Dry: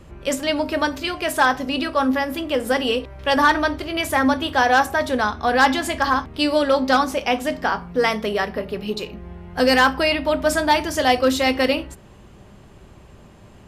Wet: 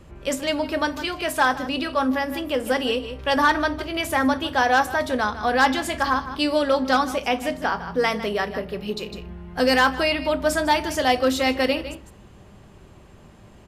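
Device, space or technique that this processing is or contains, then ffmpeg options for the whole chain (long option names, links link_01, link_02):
ducked delay: -filter_complex "[0:a]asplit=3[link_01][link_02][link_03];[link_02]adelay=154,volume=-7.5dB[link_04];[link_03]apad=whole_len=609984[link_05];[link_04][link_05]sidechaincompress=threshold=-30dB:ratio=8:attack=46:release=191[link_06];[link_01][link_06]amix=inputs=2:normalize=0,volume=-2.5dB"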